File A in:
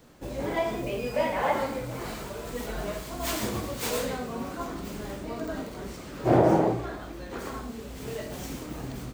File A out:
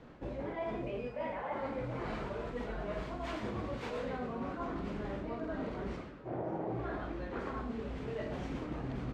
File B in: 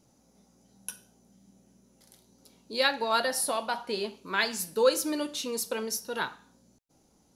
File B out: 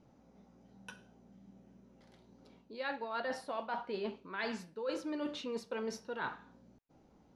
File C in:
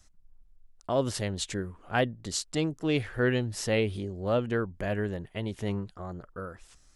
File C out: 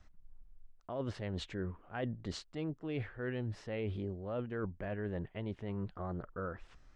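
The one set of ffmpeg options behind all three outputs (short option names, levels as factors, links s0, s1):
-af "lowpass=2400,areverse,acompressor=threshold=0.0158:ratio=16,areverse,volume=1.19"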